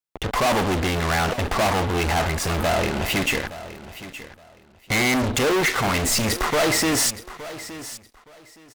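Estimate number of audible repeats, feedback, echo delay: 2, 21%, 868 ms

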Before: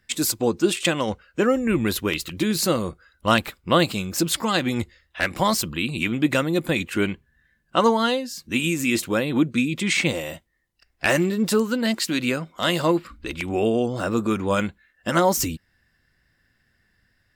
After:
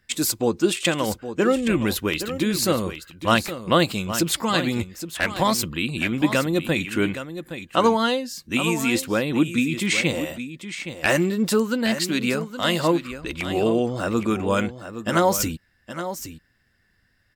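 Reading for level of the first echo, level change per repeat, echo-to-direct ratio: -11.0 dB, no regular repeats, -11.0 dB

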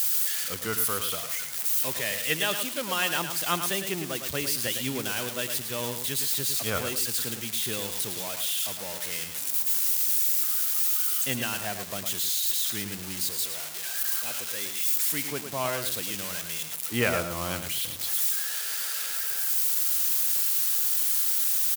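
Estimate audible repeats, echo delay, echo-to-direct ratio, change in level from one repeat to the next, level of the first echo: 2, 108 ms, -8.0 dB, -14.5 dB, -8.0 dB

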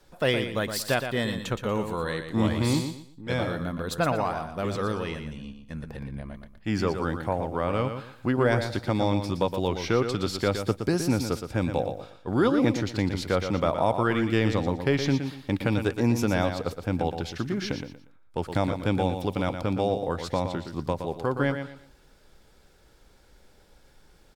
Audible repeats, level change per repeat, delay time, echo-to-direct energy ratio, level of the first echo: 3, -11.5 dB, 118 ms, -7.5 dB, -8.0 dB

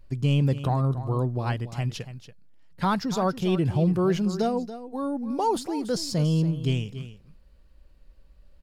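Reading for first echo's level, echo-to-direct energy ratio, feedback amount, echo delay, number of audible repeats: -13.0 dB, -13.0 dB, no regular repeats, 283 ms, 1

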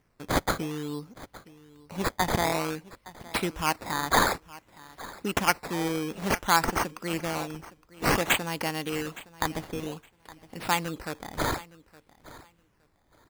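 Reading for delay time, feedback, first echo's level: 865 ms, 19%, -19.5 dB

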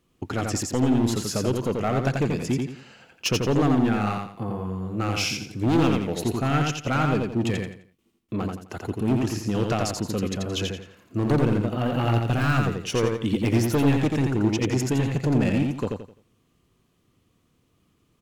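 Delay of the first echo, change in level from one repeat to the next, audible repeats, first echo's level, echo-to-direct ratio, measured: 86 ms, -10.0 dB, 4, -3.5 dB, -3.0 dB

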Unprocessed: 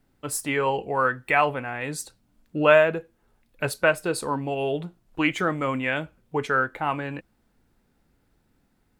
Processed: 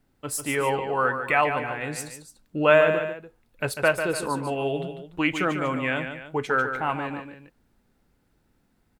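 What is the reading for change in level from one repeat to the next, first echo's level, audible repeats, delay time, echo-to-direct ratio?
-6.5 dB, -8.0 dB, 2, 146 ms, -7.0 dB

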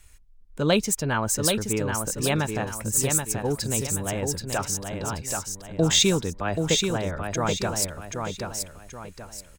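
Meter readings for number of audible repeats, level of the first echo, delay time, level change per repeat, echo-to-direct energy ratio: 3, -5.0 dB, 780 ms, -8.5 dB, -4.5 dB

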